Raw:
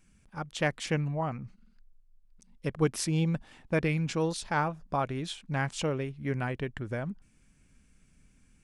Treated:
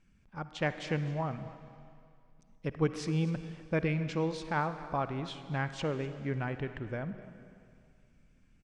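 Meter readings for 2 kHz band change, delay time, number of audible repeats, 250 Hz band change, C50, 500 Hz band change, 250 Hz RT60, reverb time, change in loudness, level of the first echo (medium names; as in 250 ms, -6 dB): -3.0 dB, 250 ms, 1, -2.5 dB, 10.5 dB, -2.5 dB, 2.4 s, 2.4 s, -3.0 dB, -18.0 dB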